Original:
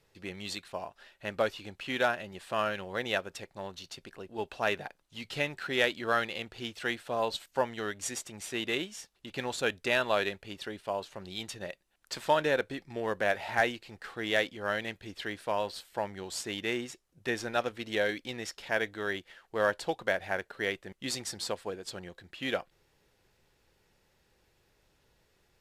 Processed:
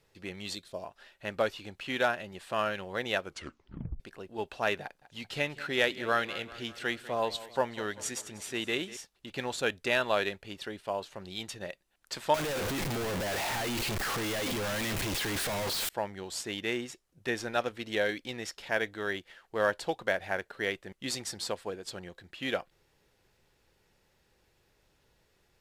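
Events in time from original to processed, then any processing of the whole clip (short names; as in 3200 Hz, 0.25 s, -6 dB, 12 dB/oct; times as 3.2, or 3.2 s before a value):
0.55–0.84 spectral gain 670–3100 Hz -9 dB
3.23 tape stop 0.77 s
4.82–8.97 feedback echo 0.195 s, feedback 57%, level -17 dB
12.34–15.89 infinite clipping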